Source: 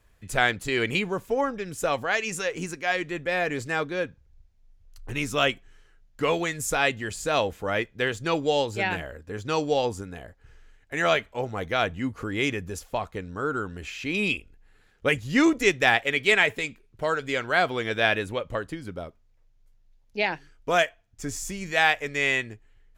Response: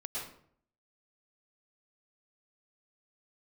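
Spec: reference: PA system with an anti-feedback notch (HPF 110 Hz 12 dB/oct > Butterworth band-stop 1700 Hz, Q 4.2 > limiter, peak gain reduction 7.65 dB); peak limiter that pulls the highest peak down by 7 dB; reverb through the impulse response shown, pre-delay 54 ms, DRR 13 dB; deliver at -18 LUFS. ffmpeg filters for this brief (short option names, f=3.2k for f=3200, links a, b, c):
-filter_complex "[0:a]alimiter=limit=-13dB:level=0:latency=1,asplit=2[a][b];[1:a]atrim=start_sample=2205,adelay=54[c];[b][c]afir=irnorm=-1:irlink=0,volume=-15dB[d];[a][d]amix=inputs=2:normalize=0,highpass=110,asuperstop=centerf=1700:order=8:qfactor=4.2,volume=12dB,alimiter=limit=-6dB:level=0:latency=1"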